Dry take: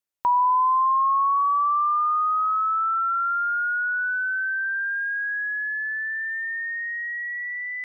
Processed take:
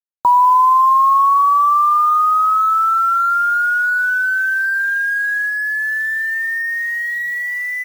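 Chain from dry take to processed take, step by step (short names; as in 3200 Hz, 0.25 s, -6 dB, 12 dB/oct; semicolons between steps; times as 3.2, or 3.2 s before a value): echo 0.184 s -23.5 dB; loudest bins only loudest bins 64; 3.74–4.61 HPF 140 Hz 12 dB/oct; 5.48–7.02 negative-ratio compressor -28 dBFS, ratio -0.5; bit-crush 8-bit; gain +8.5 dB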